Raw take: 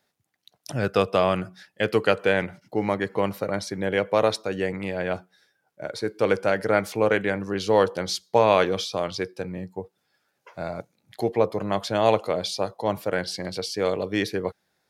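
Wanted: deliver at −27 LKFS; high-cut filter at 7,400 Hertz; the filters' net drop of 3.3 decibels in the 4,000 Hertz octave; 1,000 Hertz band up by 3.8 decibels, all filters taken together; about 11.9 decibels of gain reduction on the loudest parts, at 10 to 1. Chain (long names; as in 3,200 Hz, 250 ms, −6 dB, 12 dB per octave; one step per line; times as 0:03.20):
low-pass filter 7,400 Hz
parametric band 1,000 Hz +5 dB
parametric band 4,000 Hz −4 dB
downward compressor 10 to 1, threshold −23 dBFS
level +3.5 dB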